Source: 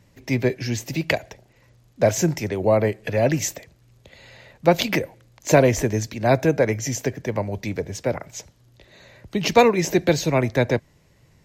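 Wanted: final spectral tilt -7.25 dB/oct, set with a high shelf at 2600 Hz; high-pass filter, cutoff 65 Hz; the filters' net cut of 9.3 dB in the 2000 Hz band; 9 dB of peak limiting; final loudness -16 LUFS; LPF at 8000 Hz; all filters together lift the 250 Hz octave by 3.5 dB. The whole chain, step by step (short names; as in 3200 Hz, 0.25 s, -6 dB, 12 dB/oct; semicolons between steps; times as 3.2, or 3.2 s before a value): HPF 65 Hz; LPF 8000 Hz; bell 250 Hz +5 dB; bell 2000 Hz -9 dB; high shelf 2600 Hz -6 dB; gain +7.5 dB; limiter -2.5 dBFS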